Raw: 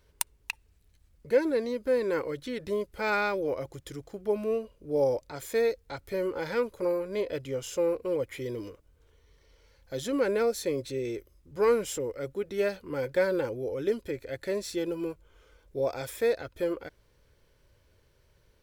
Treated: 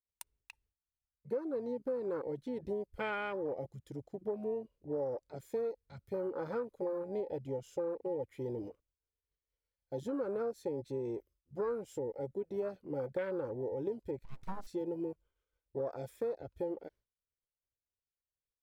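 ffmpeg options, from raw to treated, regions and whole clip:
-filter_complex "[0:a]asettb=1/sr,asplit=3[a][b][c];[a]atrim=end=14.244[d];[b]atrim=start=14.24:end=14.67,asetpts=PTS-STARTPTS,afade=t=in:d=0.004:c=qsin,afade=t=out:st=0.426:d=0.004:c=qsin,bandreject=f=50:t=h:w=6,bandreject=f=100:t=h:w=6,bandreject=f=150:t=h:w=6,bandreject=f=200:t=h:w=6,bandreject=f=250:t=h:w=6,bandreject=f=300:t=h:w=6,bandreject=f=350:t=h:w=6,bandreject=f=400:t=h:w=6,bandreject=f=450:t=h:w=6,bandreject=f=500:t=h:w=6,aeval=exprs='abs(val(0))':c=same[e];[c]atrim=start=14.666[f];[d][e]acrossfade=d=0.004:c1=hsin:c2=qsin[g];[g][f]acrossfade=d=0.004:c1=qsin:c2=hsin,agate=range=-33dB:threshold=-50dB:ratio=3:detection=peak,afwtdn=0.0224,acompressor=threshold=-31dB:ratio=5,volume=-2.5dB"

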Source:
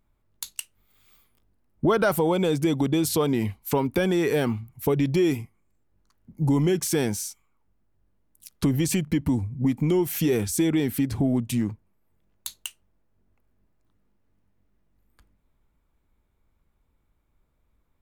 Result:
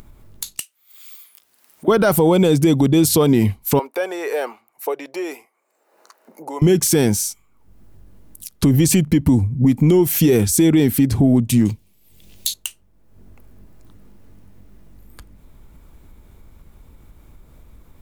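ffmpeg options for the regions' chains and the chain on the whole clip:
-filter_complex "[0:a]asettb=1/sr,asplit=3[a][b][c];[a]atrim=end=0.584[d];[b]atrim=start=0.58:end=1.88,asetpts=PTS-STARTPTS,afade=t=in:d=0.004:c=qsin,afade=t=out:st=1.296:d=0.004:c=qsin,aderivative,asplit=2[e][f];[f]highpass=f=720:p=1,volume=16dB,asoftclip=type=tanh:threshold=-10.5dB[g];[e][g]amix=inputs=2:normalize=0,lowpass=f=2.4k:p=1,volume=-6dB[h];[c]atrim=start=1.876[i];[d][h]acrossfade=d=0.004:c1=hsin:c2=qsin[j];[j][i]acrossfade=d=0.004:c1=qsin:c2=hsin,asettb=1/sr,asplit=3[k][l][m];[k]atrim=end=3.794[n];[l]atrim=start=3.79:end=6.62,asetpts=PTS-STARTPTS,afade=t=in:d=0.004:c=qsin,afade=t=out:st=2.826:d=0.004:c=qsin,highpass=f=540:w=0.5412,highpass=f=540:w=1.3066,highshelf=f=2.1k:g=-10.5,bandreject=f=3.3k:w=9.8[o];[m]atrim=start=6.616[p];[n][o]acrossfade=d=0.004:c1=hsin:c2=qsin[q];[q][p]acrossfade=d=0.004:c1=qsin:c2=hsin,asettb=1/sr,asplit=3[r][s][t];[r]atrim=end=11.654[u];[s]atrim=start=11.65:end=12.54,asetpts=PTS-STARTPTS,afade=t=in:d=0.004:c=qsin,afade=t=out:st=0.886:d=0.004:c=qsin,highshelf=f=2.1k:t=q:w=1.5:g=13,asoftclip=type=hard:threshold=-5.5dB[v];[t]atrim=start=12.536[w];[u][v]acrossfade=d=0.004:c1=hsin:c2=qsin[x];[x][w]acrossfade=d=0.004:c1=qsin:c2=hsin,equalizer=f=1.5k:t=o:w=3:g=-5,acompressor=mode=upward:threshold=-42dB:ratio=2.5,alimiter=level_in=16.5dB:limit=-1dB:release=50:level=0:latency=1,volume=-5.5dB"

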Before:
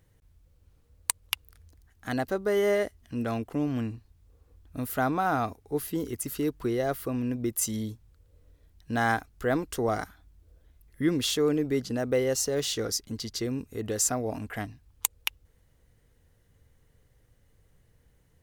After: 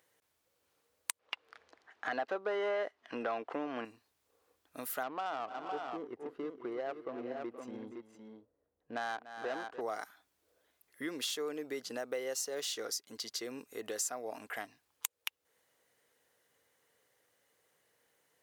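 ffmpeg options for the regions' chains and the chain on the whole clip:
-filter_complex "[0:a]asettb=1/sr,asplit=3[a][b][c];[a]atrim=end=1.194[d];[b]atrim=start=1.19:end=3.85,asetpts=PTS-STARTPTS,afade=t=in:d=0.004:c=qsin,afade=t=out:st=2.656:d=0.004:c=qsin,asplit=2[e][f];[f]highpass=f=720:p=1,volume=23dB,asoftclip=type=tanh:threshold=-7.5dB[g];[e][g]amix=inputs=2:normalize=0,lowpass=f=1.1k:p=1,volume=-6dB,lowpass=4.8k[h];[c]atrim=start=3.846[i];[d][h]acrossfade=d=0.004:c1=hsin:c2=qsin[j];[j][i]acrossfade=d=0.004:c1=qsin:c2=hsin,asettb=1/sr,asplit=3[k][l][m];[k]atrim=end=5.034[n];[l]atrim=start=5.03:end=9.81,asetpts=PTS-STARTPTS,afade=t=in:d=0.004:c=qsin,afade=t=out:st=4.776:d=0.004:c=qsin,asoftclip=type=hard:threshold=-20dB,adynamicsmooth=sensitivity=1.5:basefreq=680,aecho=1:1:291|472|513:0.15|0.2|0.398,atrim=end_sample=210798[o];[m]atrim=start=9.806[p];[n][o]acrossfade=d=0.004:c1=hsin:c2=qsin[q];[q][p]acrossfade=d=0.004:c1=qsin:c2=hsin,highpass=530,acompressor=threshold=-38dB:ratio=2.5"

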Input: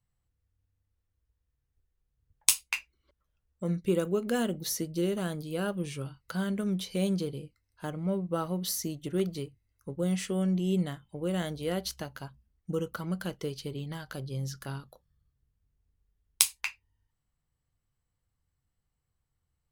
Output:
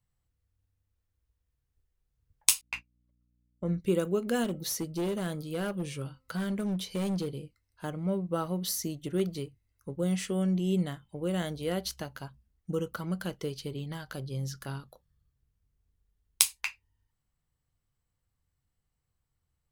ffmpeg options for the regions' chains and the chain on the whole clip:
-filter_complex "[0:a]asettb=1/sr,asplit=3[a][b][c];[a]atrim=end=2.614[d];[b]atrim=start=2.61:end=3.8,asetpts=PTS-STARTPTS,afade=t=in:d=0.004:c=qsin,afade=t=out:st=1.186:d=0.004:c=qsin,lowpass=f=1.9k:p=1,aeval=exprs='val(0)+0.00282*(sin(2*PI*60*n/s)+sin(2*PI*2*60*n/s)/2+sin(2*PI*3*60*n/s)/3+sin(2*PI*4*60*n/s)/4+sin(2*PI*5*60*n/s)/5)':c=same,agate=range=-33dB:threshold=-40dB:ratio=3:release=100:detection=peak[e];[c]atrim=start=3.796[f];[d][e]acrossfade=d=0.004:c1=hsin:c2=qsin[g];[g][f]acrossfade=d=0.004:c1=qsin:c2=hsin,asettb=1/sr,asplit=3[h][i][j];[h]atrim=end=4.444[k];[i]atrim=start=4.44:end=7.39,asetpts=PTS-STARTPTS,afade=t=in:d=0.004:c=qsin,afade=t=out:st=2.946:d=0.004:c=qsin,bandreject=f=261.3:t=h:w=4,bandreject=f=522.6:t=h:w=4,bandreject=f=783.9:t=h:w=4,bandreject=f=1.0452k:t=h:w=4,bandreject=f=1.3065k:t=h:w=4,volume=27.5dB,asoftclip=hard,volume=-27.5dB[l];[j]atrim=start=7.386[m];[k][l]acrossfade=d=0.004:c1=hsin:c2=qsin[n];[n][m]acrossfade=d=0.004:c1=qsin:c2=hsin"

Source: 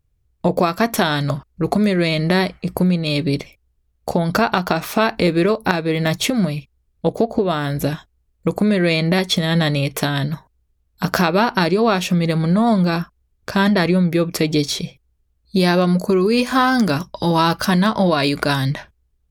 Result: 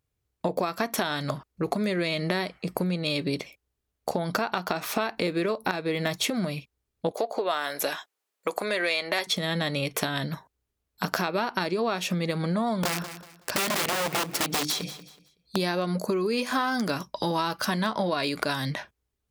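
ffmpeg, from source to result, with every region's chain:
-filter_complex "[0:a]asettb=1/sr,asplit=3[a][b][c];[a]atrim=end=7.114[d];[b]atrim=start=7.11:end=9.27,asetpts=PTS-STARTPTS,afade=t=in:d=0.004:c=qsin,afade=t=out:st=2.156:d=0.004:c=qsin,highpass=610,acontrast=23[e];[c]atrim=start=9.266[f];[d][e]acrossfade=d=0.004:c1=hsin:c2=qsin[g];[g][f]acrossfade=d=0.004:c1=qsin:c2=hsin,asettb=1/sr,asplit=3[h][i][j];[h]atrim=end=12.834[k];[i]atrim=start=12.83:end=15.56,asetpts=PTS-STARTPTS,afade=t=in:d=0.004:c=qsin,afade=t=out:st=2.726:d=0.004:c=qsin,bandreject=f=50:t=h:w=6,bandreject=f=100:t=h:w=6,bandreject=f=150:t=h:w=6,bandreject=f=200:t=h:w=6,bandreject=f=250:t=h:w=6,bandreject=f=300:t=h:w=6,bandreject=f=350:t=h:w=6,aeval=exprs='(mod(5.01*val(0)+1,2)-1)/5.01':c=same,aecho=1:1:187|374|561:0.158|0.0444|0.0124,atrim=end_sample=120393[l];[j]atrim=start=15.556[m];[k][l]acrossfade=d=0.004:c1=hsin:c2=qsin[n];[n][m]acrossfade=d=0.004:c1=qsin:c2=hsin,highpass=f=310:p=1,acompressor=threshold=-22dB:ratio=4,volume=-2dB"

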